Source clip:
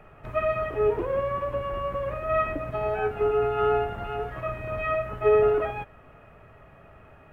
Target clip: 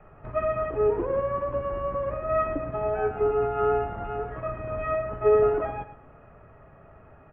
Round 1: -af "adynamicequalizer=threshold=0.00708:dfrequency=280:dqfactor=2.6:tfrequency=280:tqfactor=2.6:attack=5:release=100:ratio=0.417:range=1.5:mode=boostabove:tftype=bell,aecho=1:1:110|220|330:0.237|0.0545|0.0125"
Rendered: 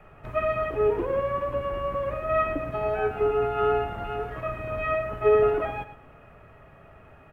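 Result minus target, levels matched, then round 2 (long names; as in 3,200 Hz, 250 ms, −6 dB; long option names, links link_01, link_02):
2,000 Hz band +4.5 dB
-af "adynamicequalizer=threshold=0.00708:dfrequency=280:dqfactor=2.6:tfrequency=280:tqfactor=2.6:attack=5:release=100:ratio=0.417:range=1.5:mode=boostabove:tftype=bell,lowpass=1600,aecho=1:1:110|220|330:0.237|0.0545|0.0125"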